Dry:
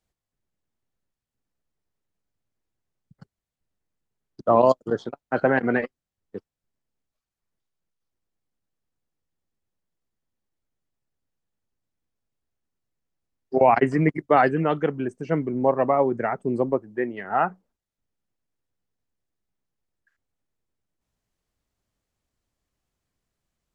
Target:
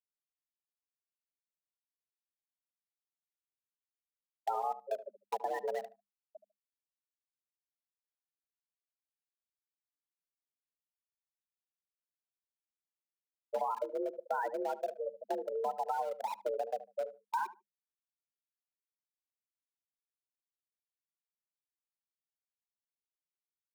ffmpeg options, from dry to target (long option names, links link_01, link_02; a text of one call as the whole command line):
ffmpeg -i in.wav -filter_complex "[0:a]lowpass=frequency=1300:poles=1,bandreject=frequency=970:width=11,afftfilt=real='re*gte(hypot(re,im),0.282)':imag='im*gte(hypot(re,im),0.282)':win_size=1024:overlap=0.75,aemphasis=mode=production:type=75kf,acrossover=split=120|530[link_01][link_02][link_03];[link_03]aeval=exprs='val(0)*gte(abs(val(0)),0.0168)':channel_layout=same[link_04];[link_01][link_02][link_04]amix=inputs=3:normalize=0,alimiter=limit=-16dB:level=0:latency=1:release=479,acompressor=threshold=-36dB:ratio=3,asubboost=boost=4:cutoff=56,afreqshift=200,asplit=2[link_05][link_06];[link_06]adelay=74,lowpass=frequency=1000:poles=1,volume=-13dB,asplit=2[link_07][link_08];[link_08]adelay=74,lowpass=frequency=1000:poles=1,volume=0.21[link_09];[link_05][link_07][link_09]amix=inputs=3:normalize=0,volume=1.5dB" out.wav